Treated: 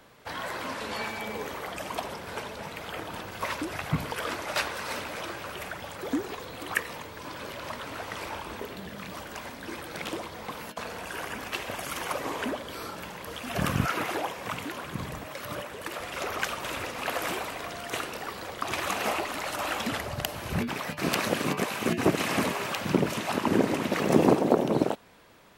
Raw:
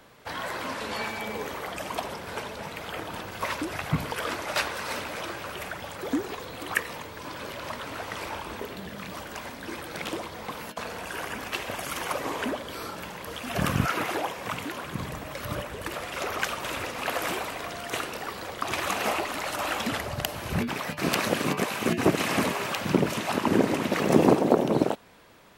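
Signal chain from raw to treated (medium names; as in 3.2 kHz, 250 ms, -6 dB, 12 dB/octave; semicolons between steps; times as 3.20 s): 15.25–16.00 s: high-pass 230 Hz 6 dB/octave; trim -1.5 dB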